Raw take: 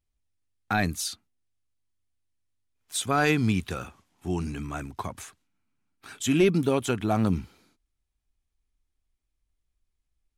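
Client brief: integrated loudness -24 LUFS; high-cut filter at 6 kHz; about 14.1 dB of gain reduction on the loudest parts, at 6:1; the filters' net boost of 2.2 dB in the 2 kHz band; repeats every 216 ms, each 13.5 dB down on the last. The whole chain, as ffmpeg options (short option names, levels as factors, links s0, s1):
-af "lowpass=6000,equalizer=f=2000:t=o:g=3,acompressor=threshold=0.0251:ratio=6,aecho=1:1:216|432:0.211|0.0444,volume=4.47"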